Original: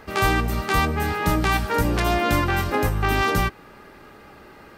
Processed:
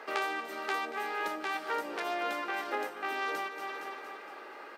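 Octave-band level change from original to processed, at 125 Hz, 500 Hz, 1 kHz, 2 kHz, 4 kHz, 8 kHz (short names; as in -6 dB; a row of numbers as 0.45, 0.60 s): under -40 dB, -11.5 dB, -10.5 dB, -10.0 dB, -12.0 dB, -16.5 dB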